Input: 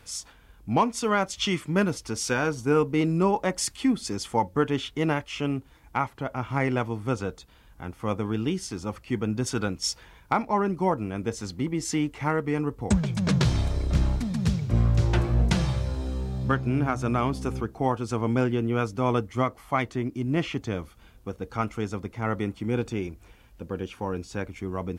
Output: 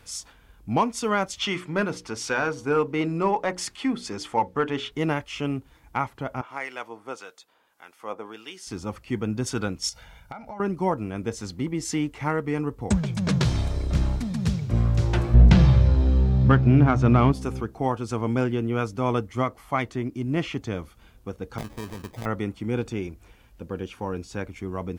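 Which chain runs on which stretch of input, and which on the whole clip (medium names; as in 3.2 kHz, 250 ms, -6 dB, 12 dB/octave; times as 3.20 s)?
1.38–4.92 s: hum notches 60/120/180/240/300/360/420/480 Hz + overdrive pedal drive 9 dB, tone 2.4 kHz, clips at -10 dBFS
6.41–8.67 s: high-pass 510 Hz + harmonic tremolo 1.7 Hz, crossover 1.4 kHz
9.89–10.60 s: comb 1.4 ms, depth 68% + compression 16:1, threshold -34 dBFS
15.34–17.32 s: bass shelf 240 Hz +8.5 dB + waveshaping leveller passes 1 + low-pass 4.4 kHz
21.58–22.26 s: compression 3:1, threshold -30 dBFS + sample-rate reducer 1.4 kHz
whole clip: none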